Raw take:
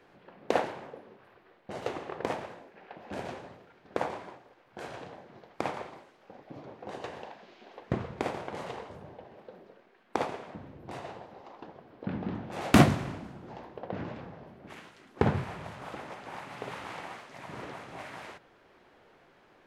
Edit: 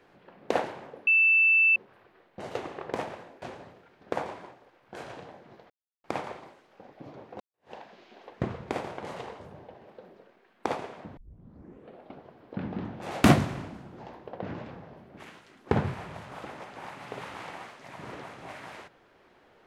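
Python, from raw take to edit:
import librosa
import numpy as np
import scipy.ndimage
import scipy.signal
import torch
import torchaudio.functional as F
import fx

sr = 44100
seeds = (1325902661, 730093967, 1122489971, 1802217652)

y = fx.edit(x, sr, fx.insert_tone(at_s=1.07, length_s=0.69, hz=2650.0, db=-17.5),
    fx.cut(start_s=2.73, length_s=0.53),
    fx.insert_silence(at_s=5.54, length_s=0.34),
    fx.fade_in_span(start_s=6.9, length_s=0.32, curve='exp'),
    fx.tape_start(start_s=10.67, length_s=1.16), tone=tone)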